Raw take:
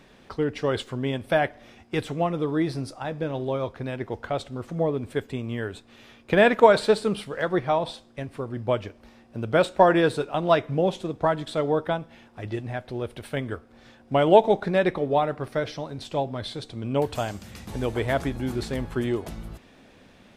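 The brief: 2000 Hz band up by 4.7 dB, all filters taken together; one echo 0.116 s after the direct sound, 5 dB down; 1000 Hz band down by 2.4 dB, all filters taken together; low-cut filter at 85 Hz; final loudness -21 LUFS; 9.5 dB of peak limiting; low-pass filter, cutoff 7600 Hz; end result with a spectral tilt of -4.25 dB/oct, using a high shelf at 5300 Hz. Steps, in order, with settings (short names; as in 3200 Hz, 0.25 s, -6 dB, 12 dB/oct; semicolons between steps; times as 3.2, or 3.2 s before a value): HPF 85 Hz; LPF 7600 Hz; bell 1000 Hz -5 dB; bell 2000 Hz +7 dB; high shelf 5300 Hz +6 dB; limiter -13.5 dBFS; echo 0.116 s -5 dB; gain +6 dB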